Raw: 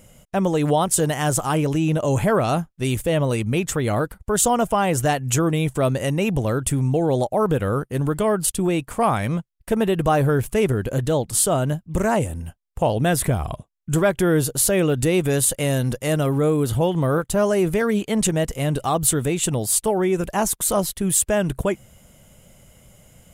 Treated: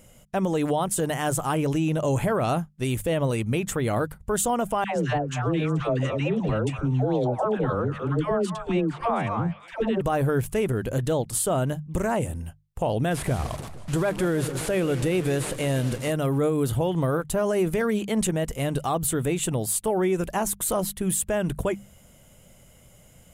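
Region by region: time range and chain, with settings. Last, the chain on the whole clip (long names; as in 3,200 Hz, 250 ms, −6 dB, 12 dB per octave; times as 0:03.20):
0:04.84–0:10.01: high-frequency loss of the air 150 metres + all-pass dispersion lows, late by 125 ms, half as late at 660 Hz + echo through a band-pass that steps 239 ms, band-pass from 1,100 Hz, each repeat 1.4 octaves, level −5.5 dB
0:13.11–0:16.11: linear delta modulator 64 kbit/s, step −30.5 dBFS + feedback echo with a swinging delay time 157 ms, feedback 60%, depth 176 cents, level −15.5 dB
whole clip: mains-hum notches 50/100/150/200 Hz; dynamic equaliser 5,300 Hz, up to −5 dB, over −39 dBFS, Q 1.3; brickwall limiter −13 dBFS; level −2.5 dB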